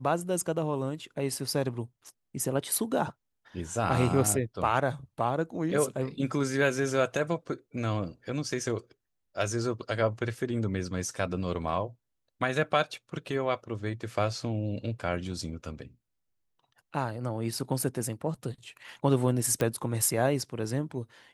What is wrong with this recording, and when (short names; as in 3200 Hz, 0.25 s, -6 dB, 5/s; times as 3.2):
19.61 pop -14 dBFS